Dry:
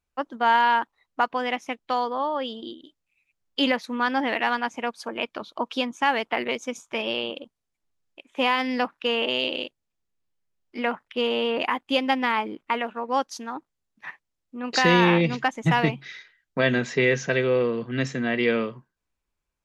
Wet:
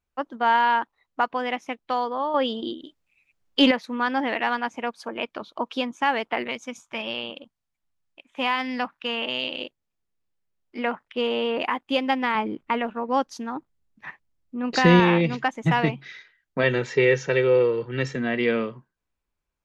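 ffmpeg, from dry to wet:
ffmpeg -i in.wav -filter_complex "[0:a]asettb=1/sr,asplit=3[link_01][link_02][link_03];[link_01]atrim=end=2.344[link_04];[link_02]atrim=start=2.34:end=3.71,asetpts=PTS-STARTPTS,afade=type=in:duration=0.004:curve=qsin,afade=type=out:start_time=1.366:duration=0.004:curve=qsin,acontrast=70[link_05];[link_03]atrim=start=3.706[link_06];[link_04][link_05]acrossfade=duration=0.004:curve1=hsin:curve2=qsin[link_07];[link_07][link_06]acrossfade=duration=0.004:curve1=qsin:curve2=hsin,asettb=1/sr,asplit=3[link_08][link_09][link_10];[link_08]atrim=end=6.464[link_11];[link_09]atrim=start=6.46:end=9.61,asetpts=PTS-STARTPTS,afade=type=in:duration=0.004:curve=qsin,afade=type=out:start_time=3.146:duration=0.004:curve=qsin,equalizer=frequency=410:width=1.5:gain=-8.5[link_12];[link_10]atrim=start=9.606[link_13];[link_11][link_12]acrossfade=duration=0.004:curve1=hsin:curve2=qsin[link_14];[link_14][link_13]acrossfade=duration=0.004:curve1=qsin:curve2=hsin,asettb=1/sr,asplit=3[link_15][link_16][link_17];[link_15]atrim=end=12.354[link_18];[link_16]atrim=start=12.35:end=15,asetpts=PTS-STARTPTS,afade=type=in:duration=0.004:curve=qsin,afade=type=out:start_time=2.646:duration=0.004:curve=qsin,lowshelf=frequency=230:gain=11[link_19];[link_17]atrim=start=14.996[link_20];[link_18][link_19]acrossfade=duration=0.004:curve1=hsin:curve2=qsin[link_21];[link_21][link_20]acrossfade=duration=0.004:curve1=qsin:curve2=hsin,asettb=1/sr,asplit=3[link_22][link_23][link_24];[link_22]atrim=end=16.634[link_25];[link_23]atrim=start=16.63:end=18.16,asetpts=PTS-STARTPTS,afade=type=in:duration=0.004:curve=qsin,afade=type=out:start_time=1.526:duration=0.004:curve=qsin,aecho=1:1:2.2:0.65,atrim=end_sample=67473[link_26];[link_24]atrim=start=18.156[link_27];[link_25][link_26]acrossfade=duration=0.004:curve1=hsin:curve2=qsin[link_28];[link_28][link_27]acrossfade=duration=0.004:curve1=qsin:curve2=hsin,highshelf=frequency=4200:gain=-6" out.wav

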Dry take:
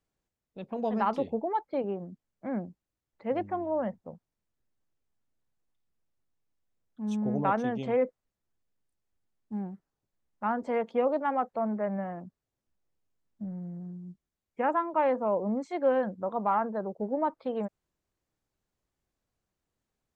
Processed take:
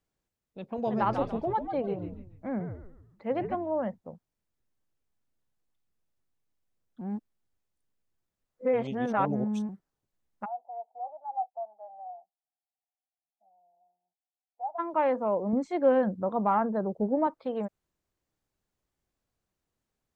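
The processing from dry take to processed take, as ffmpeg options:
ffmpeg -i in.wav -filter_complex "[0:a]asettb=1/sr,asplit=3[link_01][link_02][link_03];[link_01]atrim=end=0.634[link_04];[link_02]atrim=start=0.63:end=3.55,asetpts=PTS-STARTPTS,afade=type=in:duration=0.004:curve=qsin,afade=type=out:start_time=2.916:duration=0.004:curve=qsin,asplit=5[link_05][link_06][link_07][link_08][link_09];[link_06]adelay=143,afreqshift=-97,volume=-7.5dB[link_10];[link_07]adelay=286,afreqshift=-194,volume=-15.7dB[link_11];[link_08]adelay=429,afreqshift=-291,volume=-23.9dB[link_12];[link_09]adelay=572,afreqshift=-388,volume=-32dB[link_13];[link_05][link_10][link_11][link_12][link_13]amix=inputs=5:normalize=0,atrim=end_sample=128772[link_14];[link_03]atrim=start=3.546[link_15];[link_04][link_14]acrossfade=duration=0.004:curve1=hsin:curve2=qsin[link_16];[link_16][link_15]acrossfade=duration=0.004:curve1=qsin:curve2=hsin,asplit=3[link_17][link_18][link_19];[link_17]afade=type=out:start_time=10.44:duration=0.02[link_20];[link_18]asuperpass=centerf=750:order=4:qfactor=6.2,afade=type=in:start_time=10.44:duration=0.02,afade=type=out:start_time=14.78:duration=0.02[link_21];[link_19]afade=type=in:start_time=14.78:duration=0.02[link_22];[link_20][link_21][link_22]amix=inputs=3:normalize=0,asettb=1/sr,asplit=3[link_23][link_24][link_25];[link_23]atrim=end=15.534[link_26];[link_24]atrim=start=15.53:end=17.27,asetpts=PTS-STARTPTS,afade=type=in:duration=0.004:curve=qsin,afade=type=out:start_time=1.736:duration=0.004:curve=qsin,lowshelf=frequency=350:gain=8[link_27];[link_25]atrim=start=17.266[link_28];[link_26][link_27]acrossfade=duration=0.004:curve1=hsin:curve2=qsin[link_29];[link_29][link_28]acrossfade=duration=0.004:curve1=qsin:curve2=hsin,asplit=3[link_30][link_31][link_32];[link_30]atrim=end=7.012[link_33];[link_31]atrim=start=7.008:end=9.692,asetpts=PTS-STARTPTS,areverse[link_34];[link_32]atrim=start=9.688[link_35];[link_33][link_34]acrossfade=duration=0.004:curve1=hsin:curve2=hsin[link_36];[link_36][link_35]acrossfade=duration=0.004:curve1=hsin:curve2=hsin" out.wav

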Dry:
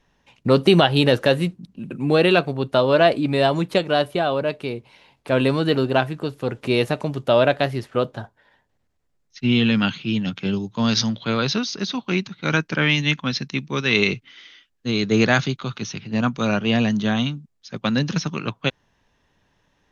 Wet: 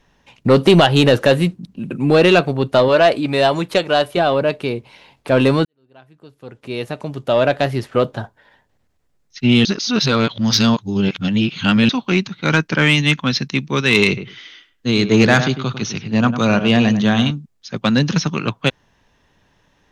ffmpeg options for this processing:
ffmpeg -i in.wav -filter_complex "[0:a]asettb=1/sr,asplit=3[link_01][link_02][link_03];[link_01]atrim=end=2.884[link_04];[link_02]atrim=start=2.88:end=4.17,asetpts=PTS-STARTPTS,afade=type=in:duration=0.004:curve=qsin,afade=type=out:start_time=1.286:duration=0.004:curve=qsin,equalizer=frequency=170:width=0.55:gain=-6.5[link_05];[link_03]atrim=start=4.166[link_06];[link_04][link_05]acrossfade=duration=0.004:curve1=hsin:curve2=qsin[link_07];[link_07][link_06]acrossfade=duration=0.004:curve1=qsin:curve2=hsin,asettb=1/sr,asplit=3[link_08][link_09][link_10];[link_08]atrim=end=14.074[link_11];[link_09]atrim=start=14.07:end=17.31,asetpts=PTS-STARTPTS,afade=type=in:duration=0.004:curve=qsin,afade=type=out:start_time=3.236:duration=0.004:curve=qsin,asplit=2[link_12][link_13];[link_13]adelay=100,lowpass=frequency=1500:poles=1,volume=-10dB,asplit=2[link_14][link_15];[link_15]adelay=100,lowpass=frequency=1500:poles=1,volume=0.17[link_16];[link_12][link_14][link_16]amix=inputs=3:normalize=0,atrim=end_sample=142884[link_17];[link_10]atrim=start=17.306[link_18];[link_11][link_17]acrossfade=duration=0.004:curve1=hsin:curve2=qsin[link_19];[link_19][link_18]acrossfade=duration=0.004:curve1=qsin:curve2=hsin,asplit=4[link_20][link_21][link_22][link_23];[link_20]atrim=end=5.65,asetpts=PTS-STARTPTS,afade=type=out:start_time=5.646:duration=0.004:curve=hsin[link_24];[link_21]atrim=start=5.65:end=9.652,asetpts=PTS-STARTPTS,afade=type=in:duration=2.22:curve=qua[link_25];[link_22]atrim=start=9.648:end=11.892,asetpts=PTS-STARTPTS,areverse[link_26];[link_23]atrim=start=11.888[link_27];[link_24][link_25]concat=n=2:v=0:a=1[link_28];[link_28][link_26]acrossfade=duration=0.004:curve1=hsin:curve2=hsin[link_29];[link_29][link_27]acrossfade=duration=0.004:curve1=hsin:curve2=hsin,acontrast=85,volume=-1dB" out.wav

